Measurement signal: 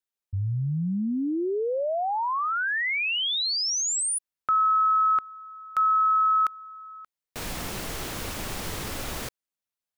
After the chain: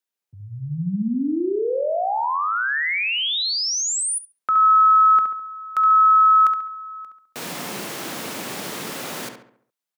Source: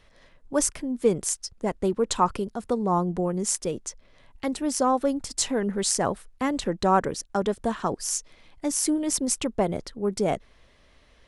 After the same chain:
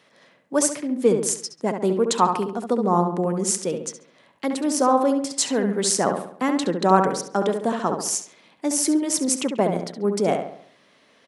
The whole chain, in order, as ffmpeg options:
-filter_complex "[0:a]highpass=f=160:w=0.5412,highpass=f=160:w=1.3066,asplit=2[a][b];[b]adelay=69,lowpass=f=2.6k:p=1,volume=-5.5dB,asplit=2[c][d];[d]adelay=69,lowpass=f=2.6k:p=1,volume=0.47,asplit=2[e][f];[f]adelay=69,lowpass=f=2.6k:p=1,volume=0.47,asplit=2[g][h];[h]adelay=69,lowpass=f=2.6k:p=1,volume=0.47,asplit=2[i][j];[j]adelay=69,lowpass=f=2.6k:p=1,volume=0.47,asplit=2[k][l];[l]adelay=69,lowpass=f=2.6k:p=1,volume=0.47[m];[c][e][g][i][k][m]amix=inputs=6:normalize=0[n];[a][n]amix=inputs=2:normalize=0,volume=3dB"

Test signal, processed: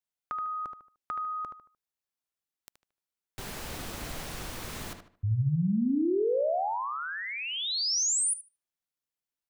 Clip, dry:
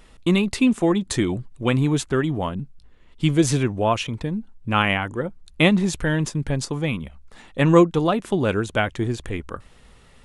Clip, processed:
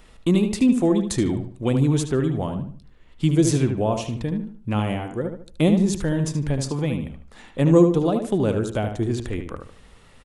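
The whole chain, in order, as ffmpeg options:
-filter_complex "[0:a]acrossover=split=730|4600[a][b][c];[b]acompressor=threshold=-38dB:ratio=6[d];[a][d][c]amix=inputs=3:normalize=0,asplit=2[e][f];[f]adelay=75,lowpass=f=3.5k:p=1,volume=-6.5dB,asplit=2[g][h];[h]adelay=75,lowpass=f=3.5k:p=1,volume=0.34,asplit=2[i][j];[j]adelay=75,lowpass=f=3.5k:p=1,volume=0.34,asplit=2[k][l];[l]adelay=75,lowpass=f=3.5k:p=1,volume=0.34[m];[e][g][i][k][m]amix=inputs=5:normalize=0"

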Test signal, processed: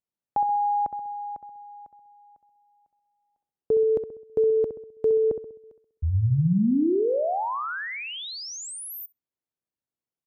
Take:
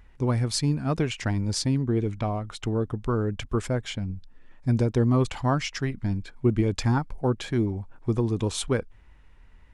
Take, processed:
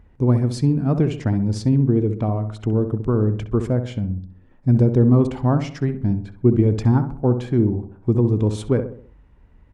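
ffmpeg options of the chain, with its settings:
-filter_complex "[0:a]highpass=f=75:p=1,tiltshelf=f=970:g=8.5,asplit=2[a][b];[b]adelay=65,lowpass=f=1.5k:p=1,volume=-8.5dB,asplit=2[c][d];[d]adelay=65,lowpass=f=1.5k:p=1,volume=0.47,asplit=2[e][f];[f]adelay=65,lowpass=f=1.5k:p=1,volume=0.47,asplit=2[g][h];[h]adelay=65,lowpass=f=1.5k:p=1,volume=0.47,asplit=2[i][j];[j]adelay=65,lowpass=f=1.5k:p=1,volume=0.47[k];[c][e][g][i][k]amix=inputs=5:normalize=0[l];[a][l]amix=inputs=2:normalize=0"

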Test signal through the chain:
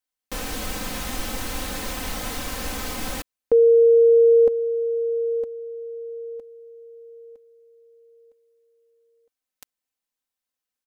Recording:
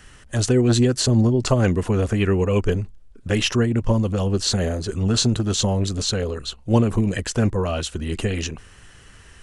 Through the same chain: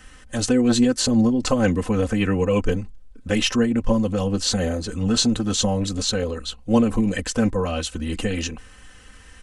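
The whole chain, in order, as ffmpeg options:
-af "aecho=1:1:3.9:0.72,volume=-1.5dB"

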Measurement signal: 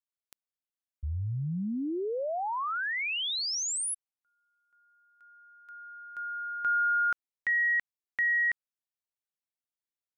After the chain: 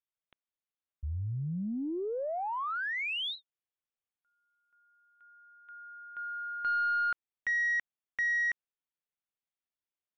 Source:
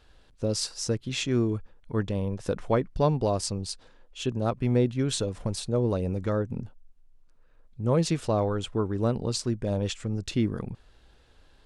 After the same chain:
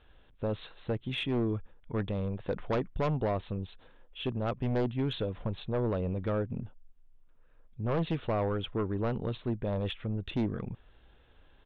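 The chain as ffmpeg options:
-af "aresample=8000,aresample=44100,aeval=exprs='0.266*(cos(1*acos(clip(val(0)/0.266,-1,1)))-cos(1*PI/2))+0.075*(cos(2*acos(clip(val(0)/0.266,-1,1)))-cos(2*PI/2))+0.0668*(cos(5*acos(clip(val(0)/0.266,-1,1)))-cos(5*PI/2))+0.00211*(cos(6*acos(clip(val(0)/0.266,-1,1)))-cos(6*PI/2))+0.00422*(cos(8*acos(clip(val(0)/0.266,-1,1)))-cos(8*PI/2))':c=same,volume=-9dB"

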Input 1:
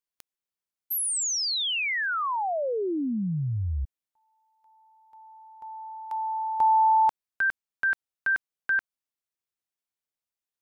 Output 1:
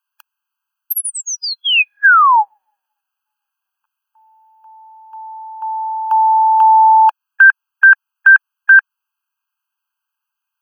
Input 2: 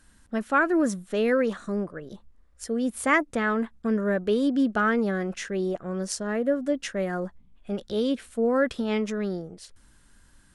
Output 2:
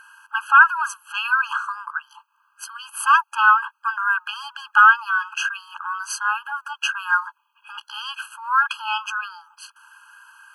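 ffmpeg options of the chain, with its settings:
-af "apsyclip=23.5dB,equalizer=f=125:t=o:w=1:g=-6,equalizer=f=250:t=o:w=1:g=-6,equalizer=f=500:t=o:w=1:g=4,equalizer=f=2k:t=o:w=1:g=8,equalizer=f=4k:t=o:w=1:g=-8,equalizer=f=8k:t=o:w=1:g=-11,afftfilt=real='re*eq(mod(floor(b*sr/1024/830),2),1)':imag='im*eq(mod(floor(b*sr/1024/830),2),1)':win_size=1024:overlap=0.75,volume=-6.5dB"

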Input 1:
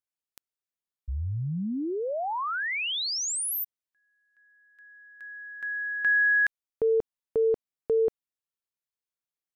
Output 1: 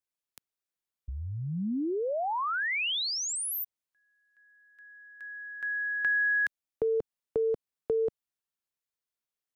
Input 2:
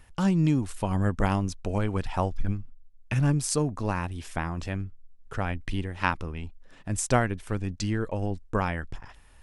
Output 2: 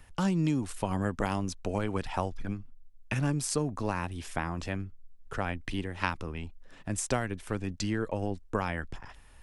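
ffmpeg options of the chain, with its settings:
-filter_complex "[0:a]acrossover=split=190|3200[a][b][c];[a]acompressor=threshold=-38dB:ratio=2.5[d];[b]acompressor=threshold=-26dB:ratio=6[e];[c]acompressor=threshold=-34dB:ratio=2[f];[d][e][f]amix=inputs=3:normalize=0"

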